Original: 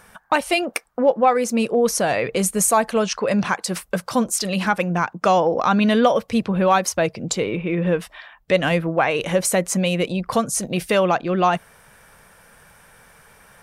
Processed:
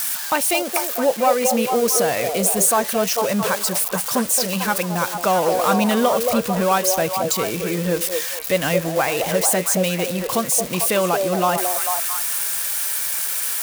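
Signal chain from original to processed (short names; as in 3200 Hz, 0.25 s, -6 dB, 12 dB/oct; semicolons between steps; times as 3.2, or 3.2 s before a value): switching spikes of -14 dBFS; on a send: delay with a stepping band-pass 0.223 s, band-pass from 520 Hz, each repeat 0.7 oct, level -2 dB; on the sum: gain -2 dB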